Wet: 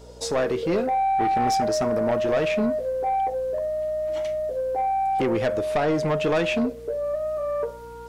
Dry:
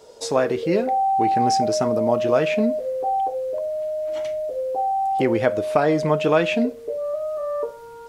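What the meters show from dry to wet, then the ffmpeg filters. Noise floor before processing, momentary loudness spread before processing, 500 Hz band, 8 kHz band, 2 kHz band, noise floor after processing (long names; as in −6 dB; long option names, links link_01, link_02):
−40 dBFS, 8 LU, −2.5 dB, −2.0 dB, −2.0 dB, −39 dBFS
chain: -af "aeval=exprs='val(0)+0.00501*(sin(2*PI*60*n/s)+sin(2*PI*2*60*n/s)/2+sin(2*PI*3*60*n/s)/3+sin(2*PI*4*60*n/s)/4+sin(2*PI*5*60*n/s)/5)':channel_layout=same,aeval=exprs='(tanh(7.08*val(0)+0.05)-tanh(0.05))/7.08':channel_layout=same"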